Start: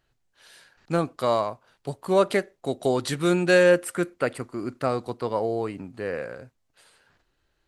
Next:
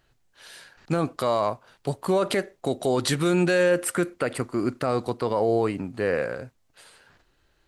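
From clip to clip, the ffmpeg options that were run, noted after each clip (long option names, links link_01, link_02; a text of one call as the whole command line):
ffmpeg -i in.wav -af "alimiter=limit=-19dB:level=0:latency=1:release=54,volume=6dB" out.wav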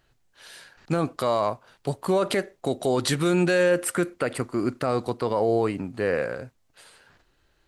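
ffmpeg -i in.wav -af anull out.wav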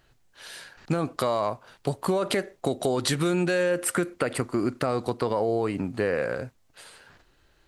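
ffmpeg -i in.wav -af "acompressor=threshold=-25dB:ratio=5,volume=3.5dB" out.wav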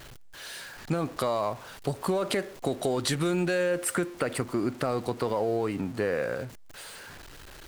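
ffmpeg -i in.wav -af "aeval=exprs='val(0)+0.5*0.0119*sgn(val(0))':channel_layout=same,volume=-3dB" out.wav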